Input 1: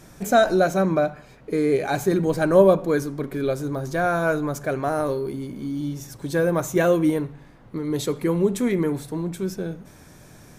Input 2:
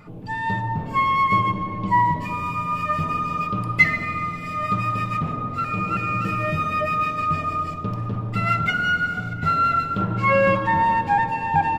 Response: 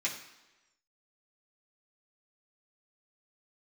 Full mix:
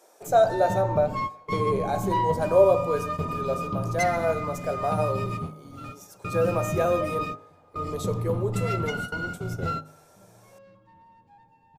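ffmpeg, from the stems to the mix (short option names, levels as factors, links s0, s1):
-filter_complex "[0:a]highpass=f=530:w=0.5412,highpass=f=530:w=1.3066,tiltshelf=f=1300:g=6.5,volume=0.841,asplit=3[s0][s1][s2];[s1]volume=0.211[s3];[1:a]asoftclip=type=tanh:threshold=0.211,adelay=200,volume=0.891[s4];[s2]apad=whole_len=528334[s5];[s4][s5]sidechaingate=range=0.0316:threshold=0.00708:ratio=16:detection=peak[s6];[2:a]atrim=start_sample=2205[s7];[s3][s7]afir=irnorm=-1:irlink=0[s8];[s0][s6][s8]amix=inputs=3:normalize=0,equalizer=f=1900:t=o:w=1.6:g=-10,bandreject=f=51.91:t=h:w=4,bandreject=f=103.82:t=h:w=4,bandreject=f=155.73:t=h:w=4,bandreject=f=207.64:t=h:w=4,bandreject=f=259.55:t=h:w=4,bandreject=f=311.46:t=h:w=4,bandreject=f=363.37:t=h:w=4,bandreject=f=415.28:t=h:w=4,bandreject=f=467.19:t=h:w=4,bandreject=f=519.1:t=h:w=4,bandreject=f=571.01:t=h:w=4,bandreject=f=622.92:t=h:w=4,bandreject=f=674.83:t=h:w=4,bandreject=f=726.74:t=h:w=4,bandreject=f=778.65:t=h:w=4,bandreject=f=830.56:t=h:w=4,bandreject=f=882.47:t=h:w=4,bandreject=f=934.38:t=h:w=4,bandreject=f=986.29:t=h:w=4,bandreject=f=1038.2:t=h:w=4,bandreject=f=1090.11:t=h:w=4,bandreject=f=1142.02:t=h:w=4,bandreject=f=1193.93:t=h:w=4,bandreject=f=1245.84:t=h:w=4,bandreject=f=1297.75:t=h:w=4,bandreject=f=1349.66:t=h:w=4,bandreject=f=1401.57:t=h:w=4,bandreject=f=1453.48:t=h:w=4,bandreject=f=1505.39:t=h:w=4,bandreject=f=1557.3:t=h:w=4,bandreject=f=1609.21:t=h:w=4,bandreject=f=1661.12:t=h:w=4,bandreject=f=1713.03:t=h:w=4"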